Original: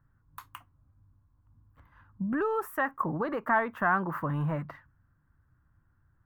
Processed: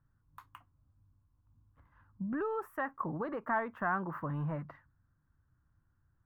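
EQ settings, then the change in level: high shelf 3100 Hz -10.5 dB; -5.5 dB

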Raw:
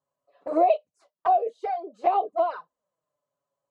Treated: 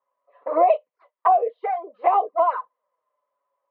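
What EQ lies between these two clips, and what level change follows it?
air absorption 170 m; speaker cabinet 440–3400 Hz, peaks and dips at 500 Hz +8 dB, 1000 Hz +10 dB, 2000 Hz +9 dB; bell 1200 Hz +4.5 dB 0.42 oct; +1.5 dB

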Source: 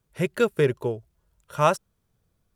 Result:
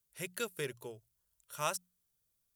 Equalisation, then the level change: pre-emphasis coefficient 0.9; notches 60/120/180 Hz; 0.0 dB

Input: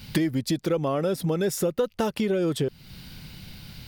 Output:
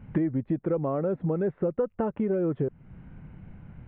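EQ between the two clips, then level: Gaussian blur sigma 5.6 samples; -1.5 dB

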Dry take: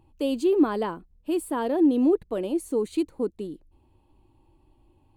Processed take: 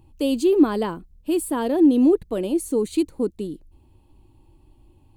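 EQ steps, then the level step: low shelf 390 Hz +9.5 dB; high shelf 2500 Hz +10.5 dB; -1.5 dB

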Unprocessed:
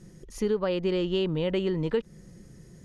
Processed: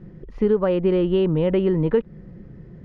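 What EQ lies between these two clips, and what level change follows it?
LPF 2100 Hz 6 dB/oct; air absorption 370 m; +8.5 dB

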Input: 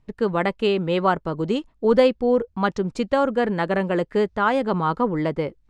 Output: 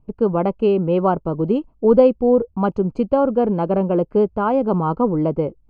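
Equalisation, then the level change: running mean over 24 samples; +5.0 dB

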